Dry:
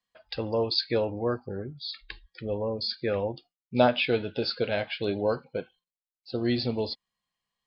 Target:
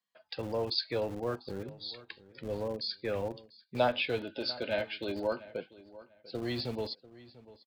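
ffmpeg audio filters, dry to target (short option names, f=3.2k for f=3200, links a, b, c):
-filter_complex "[0:a]asplit=3[a][b][c];[a]afade=t=out:st=4.2:d=0.02[d];[b]aecho=1:1:3.3:0.52,afade=t=in:st=4.2:d=0.02,afade=t=out:st=5.49:d=0.02[e];[c]afade=t=in:st=5.49:d=0.02[f];[d][e][f]amix=inputs=3:normalize=0,acrossover=split=120|390|1000[g][h][i][j];[g]acrusher=bits=6:mix=0:aa=0.000001[k];[h]alimiter=level_in=6.5dB:limit=-24dB:level=0:latency=1,volume=-6.5dB[l];[k][l][i][j]amix=inputs=4:normalize=0,asplit=2[m][n];[n]adelay=694,lowpass=f=3.6k:p=1,volume=-18.5dB,asplit=2[o][p];[p]adelay=694,lowpass=f=3.6k:p=1,volume=0.22[q];[m][o][q]amix=inputs=3:normalize=0,volume=-5dB"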